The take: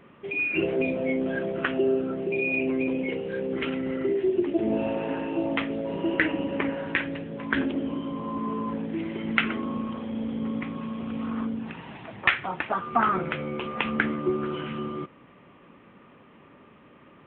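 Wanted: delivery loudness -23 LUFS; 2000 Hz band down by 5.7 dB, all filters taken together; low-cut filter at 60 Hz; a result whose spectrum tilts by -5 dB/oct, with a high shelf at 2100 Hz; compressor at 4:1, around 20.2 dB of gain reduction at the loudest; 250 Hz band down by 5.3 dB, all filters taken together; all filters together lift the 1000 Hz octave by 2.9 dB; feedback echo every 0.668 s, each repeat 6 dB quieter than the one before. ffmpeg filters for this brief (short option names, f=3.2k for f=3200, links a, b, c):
-af "highpass=60,equalizer=f=250:t=o:g=-7,equalizer=f=1k:t=o:g=7.5,equalizer=f=2k:t=o:g=-6.5,highshelf=f=2.1k:g=-5.5,acompressor=threshold=-41dB:ratio=4,aecho=1:1:668|1336|2004|2672|3340|4008:0.501|0.251|0.125|0.0626|0.0313|0.0157,volume=18.5dB"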